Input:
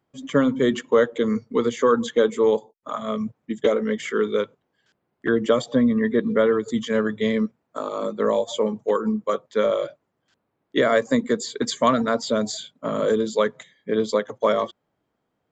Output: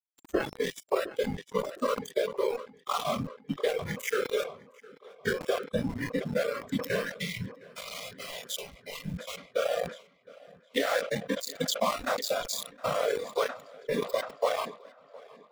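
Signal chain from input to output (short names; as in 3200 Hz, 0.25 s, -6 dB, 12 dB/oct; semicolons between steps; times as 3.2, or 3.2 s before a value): whisperiser; compressor 20:1, threshold -24 dBFS, peak gain reduction 14.5 dB; low shelf 140 Hz -8.5 dB; sample gate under -30 dBFS; spectral noise reduction 18 dB; spectral gain 7.17–9.37, 210–1900 Hz -16 dB; on a send: tape echo 0.711 s, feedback 75%, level -22 dB, low-pass 4400 Hz; on the sum: sustainer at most 130 dB/s; gain +2 dB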